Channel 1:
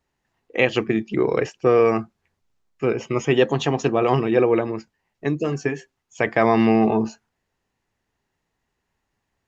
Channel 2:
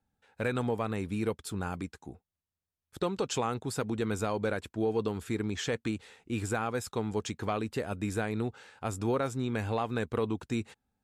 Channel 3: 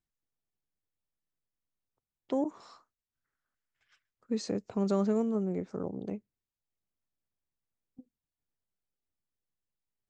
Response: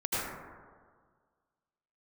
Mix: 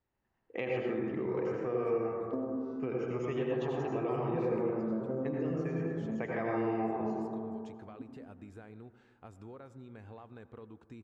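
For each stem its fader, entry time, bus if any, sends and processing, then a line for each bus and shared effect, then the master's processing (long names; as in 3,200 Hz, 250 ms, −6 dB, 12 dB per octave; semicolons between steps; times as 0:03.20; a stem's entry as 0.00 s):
−13.0 dB, 0.00 s, bus A, send −3.5 dB, no processing
−13.0 dB, 0.40 s, bus A, send −23 dB, downward compressor 3 to 1, threshold −35 dBFS, peak gain reduction 8 dB
0.0 dB, 0.00 s, no bus, send −7 dB, vocoder with an arpeggio as carrier minor triad, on A2, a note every 499 ms; downward compressor, threshold −30 dBFS, peak gain reduction 6 dB
bus A: 0.0 dB, downward compressor, threshold −33 dBFS, peak gain reduction 8.5 dB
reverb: on, RT60 1.7 s, pre-delay 72 ms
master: low-pass filter 1,900 Hz 6 dB per octave; downward compressor 2 to 1, threshold −36 dBFS, peak gain reduction 10.5 dB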